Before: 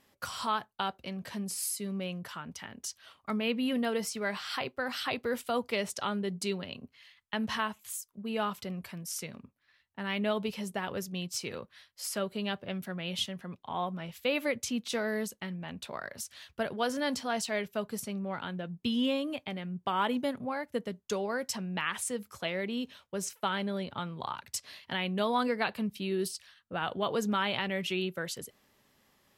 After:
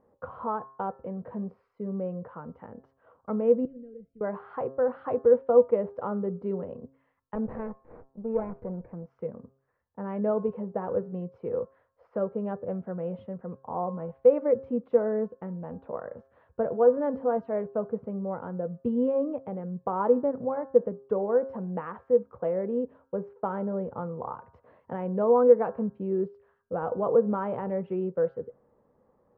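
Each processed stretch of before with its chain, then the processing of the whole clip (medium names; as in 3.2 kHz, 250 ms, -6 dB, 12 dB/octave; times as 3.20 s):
3.65–4.21 s: companding laws mixed up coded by mu + Butterworth band-stop 960 Hz, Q 0.87 + amplifier tone stack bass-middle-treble 10-0-1
7.35–9.06 s: comb filter that takes the minimum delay 0.4 ms + peaking EQ 3 kHz -11.5 dB 0.31 oct
whole clip: low-pass 1.1 kHz 24 dB/octave; peaking EQ 490 Hz +15 dB 0.24 oct; de-hum 134.4 Hz, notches 13; trim +2.5 dB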